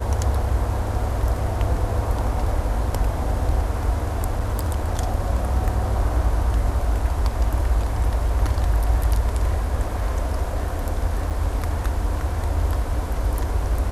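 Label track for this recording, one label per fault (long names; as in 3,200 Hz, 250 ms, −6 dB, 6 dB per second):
4.390000	4.950000	clipping −17 dBFS
11.300000	11.310000	drop-out 6.9 ms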